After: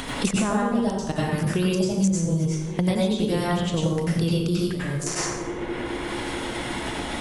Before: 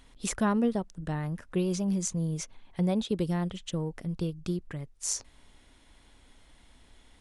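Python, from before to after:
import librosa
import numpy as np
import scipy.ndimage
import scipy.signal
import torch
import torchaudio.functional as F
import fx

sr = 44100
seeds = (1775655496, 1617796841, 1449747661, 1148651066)

y = fx.hum_notches(x, sr, base_hz=50, count=4)
y = fx.level_steps(y, sr, step_db=16)
y = fx.echo_banded(y, sr, ms=215, feedback_pct=80, hz=350.0, wet_db=-20.5)
y = fx.rev_plate(y, sr, seeds[0], rt60_s=0.71, hf_ratio=0.75, predelay_ms=80, drr_db=-6.5)
y = fx.band_squash(y, sr, depth_pct=100)
y = F.gain(torch.from_numpy(y), 6.5).numpy()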